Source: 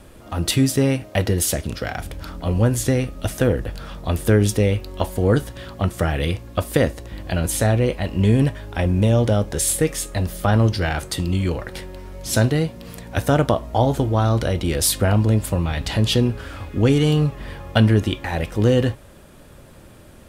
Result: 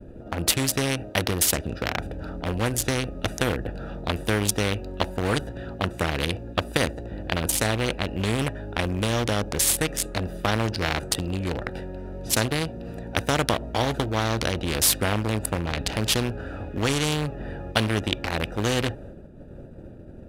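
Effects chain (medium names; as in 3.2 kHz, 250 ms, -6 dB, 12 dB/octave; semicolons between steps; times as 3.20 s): local Wiener filter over 41 samples; expander -40 dBFS; spectrum-flattening compressor 2:1; trim +1.5 dB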